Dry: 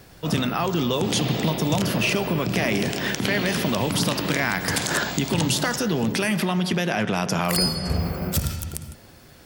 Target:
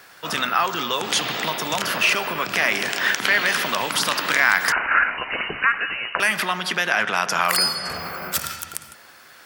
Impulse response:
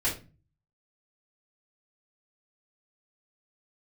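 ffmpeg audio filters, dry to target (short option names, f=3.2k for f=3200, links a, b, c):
-filter_complex "[0:a]highpass=f=1.1k:p=1,equalizer=f=1.4k:t=o:w=1.4:g=9.5,asettb=1/sr,asplit=3[a][b][c];[a]atrim=end=4.724[d];[b]atrim=start=4.72:end=6.2,asetpts=PTS-STARTPTS,afade=t=in:d=0.004:c=qsin,afade=t=out:st=1.476:d=0.004:c=qsin,lowpass=f=2.6k:t=q:w=0.5098,lowpass=f=2.6k:t=q:w=0.6013,lowpass=f=2.6k:t=q:w=0.9,lowpass=f=2.6k:t=q:w=2.563,afreqshift=-3100[e];[c]atrim=start=6.196[f];[d][e]acrossfade=d=0.004:c1=hsin:c2=qsin[g];[g][f]acrossfade=d=0.004:c1=qsin:c2=hsin,volume=2.5dB"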